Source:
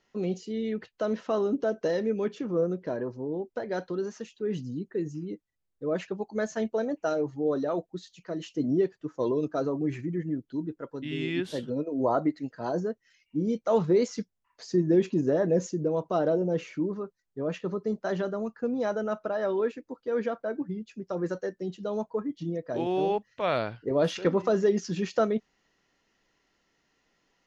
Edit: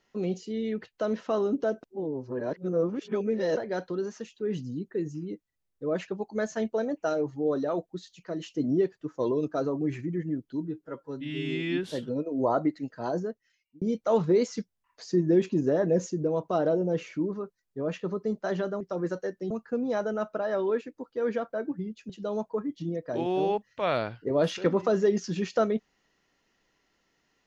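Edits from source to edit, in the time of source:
1.83–3.57 s: reverse
10.65–11.44 s: stretch 1.5×
12.71–13.42 s: fade out
21.00–21.70 s: move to 18.41 s

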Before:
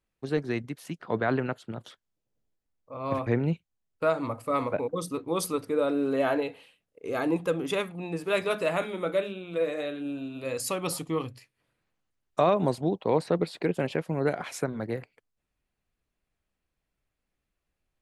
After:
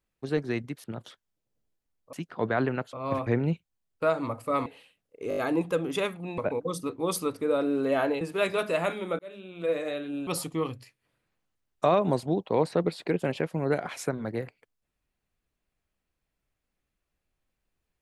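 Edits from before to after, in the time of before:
0.84–1.64 s: move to 2.93 s
4.66–6.49 s: move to 8.13 s
7.12 s: stutter 0.02 s, 5 plays
9.11–9.60 s: fade in
10.19–10.82 s: delete

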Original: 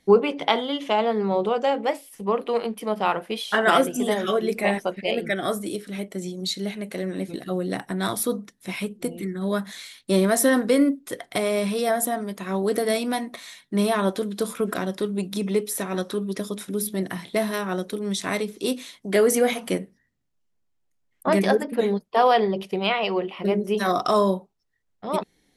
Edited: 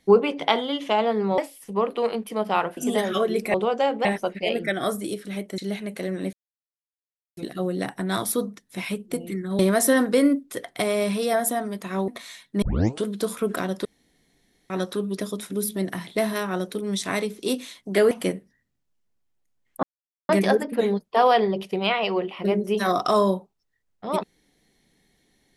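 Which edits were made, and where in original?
1.38–1.89 s: move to 4.67 s
3.28–3.90 s: delete
6.20–6.53 s: delete
7.28 s: insert silence 1.04 s
9.50–10.15 s: delete
12.64–13.26 s: delete
13.80 s: tape start 0.42 s
15.03–15.88 s: room tone
19.29–19.57 s: delete
21.29 s: insert silence 0.46 s

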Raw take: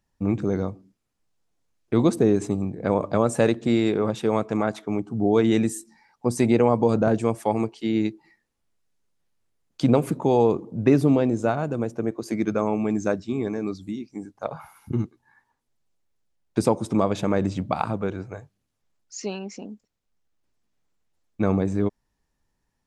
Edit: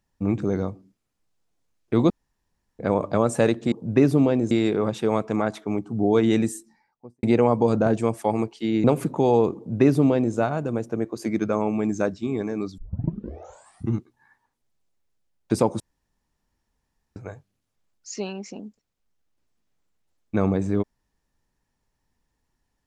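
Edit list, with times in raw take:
2.10–2.79 s: room tone
5.63–6.44 s: studio fade out
8.05–9.90 s: delete
10.62–11.41 s: copy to 3.72 s
13.84 s: tape start 1.16 s
16.86–18.22 s: room tone

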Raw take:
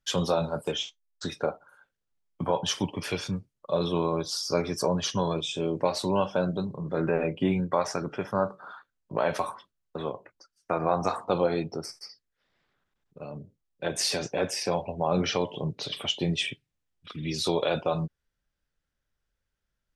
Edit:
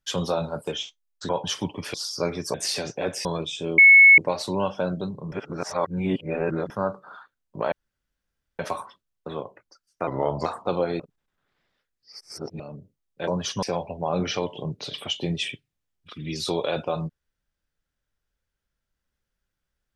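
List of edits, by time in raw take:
1.29–2.48 s: delete
3.13–4.26 s: delete
4.86–5.21 s: swap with 13.90–14.61 s
5.74 s: add tone 2.2 kHz -8 dBFS 0.40 s
6.88–8.26 s: reverse
9.28 s: insert room tone 0.87 s
10.76–11.08 s: speed 83%
11.62–13.22 s: reverse

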